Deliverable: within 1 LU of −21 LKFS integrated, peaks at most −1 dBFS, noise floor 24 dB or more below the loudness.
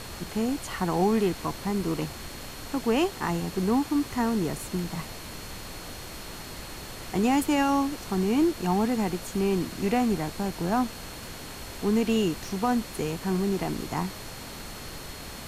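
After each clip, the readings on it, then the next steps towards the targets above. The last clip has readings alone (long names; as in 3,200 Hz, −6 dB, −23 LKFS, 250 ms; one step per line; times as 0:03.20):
interfering tone 4,300 Hz; level of the tone −49 dBFS; background noise floor −40 dBFS; target noise floor −52 dBFS; integrated loudness −27.5 LKFS; sample peak −12.5 dBFS; target loudness −21.0 LKFS
→ notch filter 4,300 Hz, Q 30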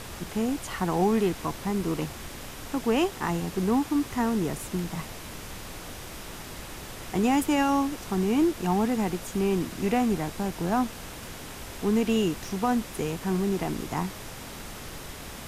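interfering tone none found; background noise floor −41 dBFS; target noise floor −52 dBFS
→ noise reduction from a noise print 11 dB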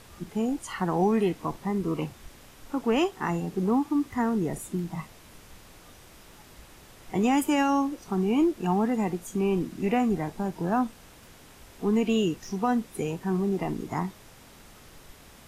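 background noise floor −52 dBFS; integrated loudness −27.5 LKFS; sample peak −13.5 dBFS; target loudness −21.0 LKFS
→ level +6.5 dB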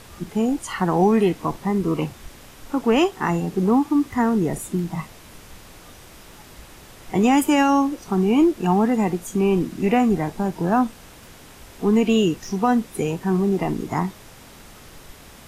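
integrated loudness −21.0 LKFS; sample peak −7.0 dBFS; background noise floor −45 dBFS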